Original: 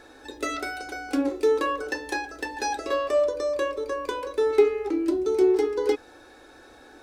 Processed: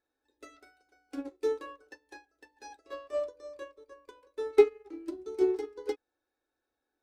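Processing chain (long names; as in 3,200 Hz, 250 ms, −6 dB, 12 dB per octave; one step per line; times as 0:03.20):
expander for the loud parts 2.5 to 1, over −37 dBFS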